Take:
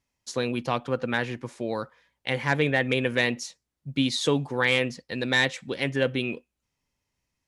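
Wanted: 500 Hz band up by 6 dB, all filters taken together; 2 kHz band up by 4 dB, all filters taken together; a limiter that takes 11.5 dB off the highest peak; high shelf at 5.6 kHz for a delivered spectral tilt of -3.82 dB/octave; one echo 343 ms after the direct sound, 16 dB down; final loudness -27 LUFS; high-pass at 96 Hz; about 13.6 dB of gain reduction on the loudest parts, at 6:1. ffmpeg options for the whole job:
-af "highpass=96,equalizer=f=500:t=o:g=6.5,equalizer=f=2000:t=o:g=3.5,highshelf=f=5600:g=6.5,acompressor=threshold=0.0355:ratio=6,alimiter=level_in=1.06:limit=0.0631:level=0:latency=1,volume=0.944,aecho=1:1:343:0.158,volume=2.99"

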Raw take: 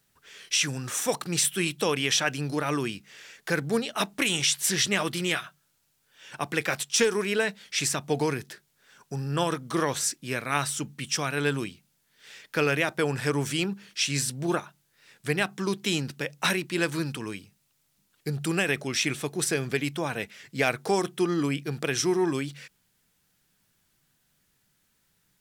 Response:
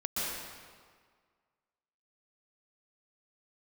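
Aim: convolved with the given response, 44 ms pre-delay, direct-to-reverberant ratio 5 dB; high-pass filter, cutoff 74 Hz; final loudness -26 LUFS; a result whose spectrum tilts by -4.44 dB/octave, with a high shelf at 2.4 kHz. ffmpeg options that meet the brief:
-filter_complex "[0:a]highpass=74,highshelf=f=2400:g=-7.5,asplit=2[s0][s1];[1:a]atrim=start_sample=2205,adelay=44[s2];[s1][s2]afir=irnorm=-1:irlink=0,volume=0.266[s3];[s0][s3]amix=inputs=2:normalize=0,volume=1.41"

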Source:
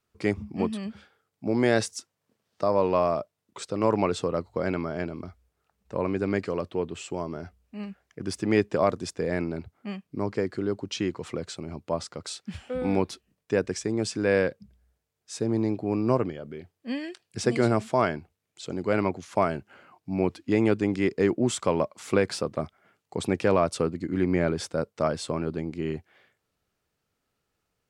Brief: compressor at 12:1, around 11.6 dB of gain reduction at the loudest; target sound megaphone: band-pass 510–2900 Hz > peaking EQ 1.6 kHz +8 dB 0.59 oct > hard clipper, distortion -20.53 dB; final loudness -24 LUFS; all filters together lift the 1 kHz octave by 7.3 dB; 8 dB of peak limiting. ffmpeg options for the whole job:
-af "equalizer=f=1000:t=o:g=7.5,acompressor=threshold=0.0501:ratio=12,alimiter=limit=0.1:level=0:latency=1,highpass=510,lowpass=2900,equalizer=f=1600:t=o:w=0.59:g=8,asoftclip=type=hard:threshold=0.0562,volume=5.01"

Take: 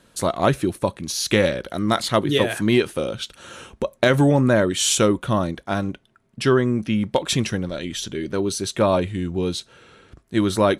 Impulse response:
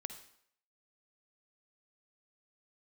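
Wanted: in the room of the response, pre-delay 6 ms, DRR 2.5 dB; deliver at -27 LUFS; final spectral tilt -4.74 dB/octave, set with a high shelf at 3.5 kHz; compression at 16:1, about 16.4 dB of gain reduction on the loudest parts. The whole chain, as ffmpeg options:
-filter_complex "[0:a]highshelf=f=3500:g=-8.5,acompressor=threshold=0.0355:ratio=16,asplit=2[s0][s1];[1:a]atrim=start_sample=2205,adelay=6[s2];[s1][s2]afir=irnorm=-1:irlink=0,volume=1[s3];[s0][s3]amix=inputs=2:normalize=0,volume=1.88"

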